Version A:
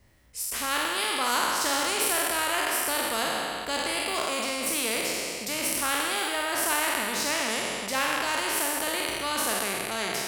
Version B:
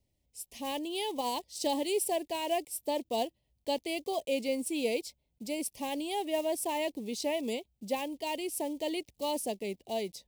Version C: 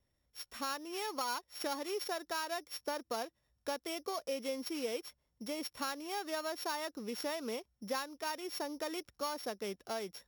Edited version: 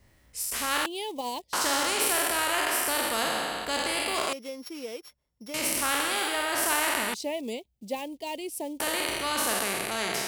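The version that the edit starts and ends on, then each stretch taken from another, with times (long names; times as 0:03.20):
A
0:00.86–0:01.53: punch in from B
0:04.33–0:05.54: punch in from C
0:07.14–0:08.80: punch in from B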